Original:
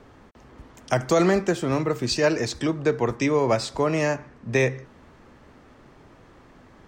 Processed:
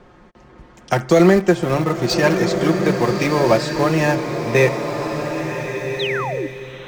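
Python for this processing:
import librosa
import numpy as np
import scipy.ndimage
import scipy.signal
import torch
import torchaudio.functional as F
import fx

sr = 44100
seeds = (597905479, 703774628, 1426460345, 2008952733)

p1 = fx.high_shelf(x, sr, hz=8300.0, db=-10.5)
p2 = p1 + 0.55 * np.pad(p1, (int(5.6 * sr / 1000.0), 0))[:len(p1)]
p3 = np.where(np.abs(p2) >= 10.0 ** (-21.5 / 20.0), p2, 0.0)
p4 = p2 + (p3 * 10.0 ** (-9.0 / 20.0))
p5 = fx.spec_paint(p4, sr, seeds[0], shape='fall', start_s=5.99, length_s=0.48, low_hz=270.0, high_hz=4200.0, level_db=-28.0)
p6 = fx.rev_bloom(p5, sr, seeds[1], attack_ms=1520, drr_db=4.5)
y = p6 * 10.0 ** (2.5 / 20.0)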